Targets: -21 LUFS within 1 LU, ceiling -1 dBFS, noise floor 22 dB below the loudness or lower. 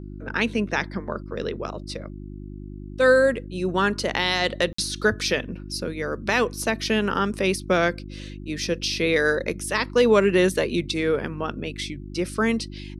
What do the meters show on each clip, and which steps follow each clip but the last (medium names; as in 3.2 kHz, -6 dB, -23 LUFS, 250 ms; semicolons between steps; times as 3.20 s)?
dropouts 1; longest dropout 54 ms; hum 50 Hz; highest harmonic 350 Hz; hum level -35 dBFS; loudness -23.5 LUFS; peak level -7.5 dBFS; loudness target -21.0 LUFS
-> interpolate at 4.73 s, 54 ms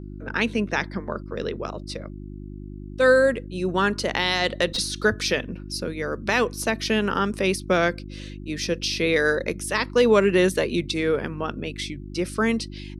dropouts 0; hum 50 Hz; highest harmonic 350 Hz; hum level -35 dBFS
-> de-hum 50 Hz, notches 7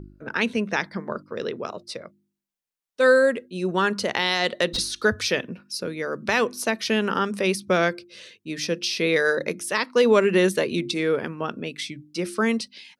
hum not found; loudness -23.5 LUFS; peak level -8.0 dBFS; loudness target -21.0 LUFS
-> trim +2.5 dB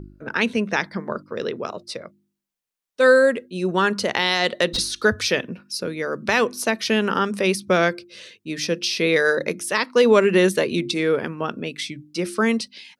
loudness -21.0 LUFS; peak level -5.5 dBFS; noise floor -80 dBFS